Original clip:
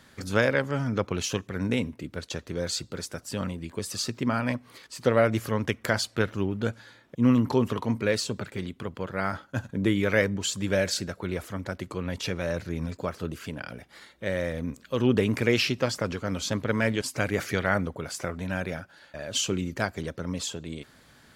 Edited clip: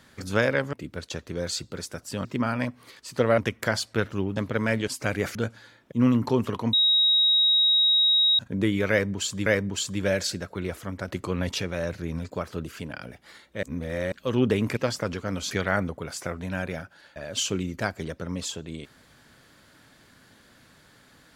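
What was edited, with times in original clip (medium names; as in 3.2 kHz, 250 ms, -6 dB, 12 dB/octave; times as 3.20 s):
0.73–1.93 s: delete
3.45–4.12 s: delete
5.25–5.60 s: delete
7.96–9.62 s: bleep 3.8 kHz -17 dBFS
10.13–10.69 s: loop, 2 plays
11.75–12.25 s: gain +4 dB
14.30–14.79 s: reverse
15.44–15.76 s: delete
16.50–17.49 s: move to 6.58 s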